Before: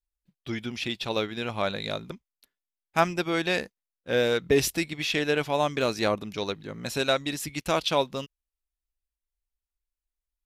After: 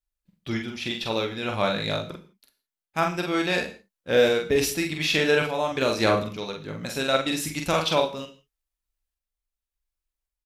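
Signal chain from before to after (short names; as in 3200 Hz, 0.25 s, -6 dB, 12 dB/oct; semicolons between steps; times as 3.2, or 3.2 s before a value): random-step tremolo 3.5 Hz; doubler 45 ms -4 dB; non-linear reverb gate 0.19 s falling, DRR 8.5 dB; gain +3 dB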